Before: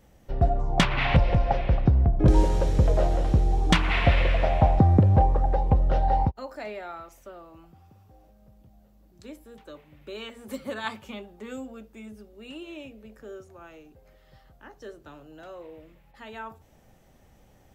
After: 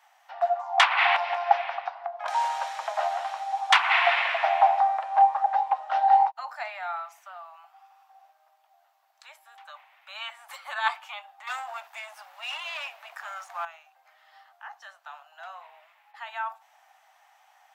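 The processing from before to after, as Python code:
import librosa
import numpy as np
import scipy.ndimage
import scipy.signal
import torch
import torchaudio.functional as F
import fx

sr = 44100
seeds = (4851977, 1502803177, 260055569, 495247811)

y = fx.leveller(x, sr, passes=3, at=(11.47, 13.65))
y = scipy.signal.sosfilt(scipy.signal.butter(12, 710.0, 'highpass', fs=sr, output='sos'), y)
y = fx.high_shelf(y, sr, hz=4000.0, db=-12.0)
y = F.gain(torch.from_numpy(y), 8.5).numpy()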